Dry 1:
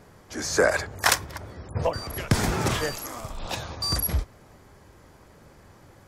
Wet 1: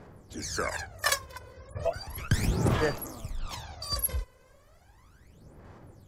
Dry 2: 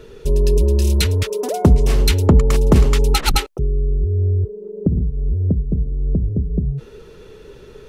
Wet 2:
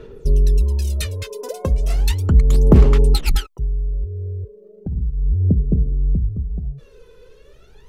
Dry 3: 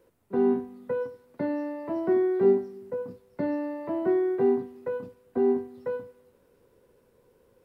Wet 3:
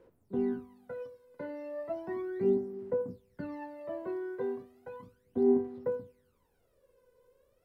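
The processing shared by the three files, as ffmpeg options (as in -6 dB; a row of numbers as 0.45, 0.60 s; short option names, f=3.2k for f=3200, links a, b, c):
-af "aphaser=in_gain=1:out_gain=1:delay=2:decay=0.76:speed=0.35:type=sinusoidal,volume=-10dB"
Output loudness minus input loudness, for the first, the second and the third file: -5.0, -1.5, -6.5 LU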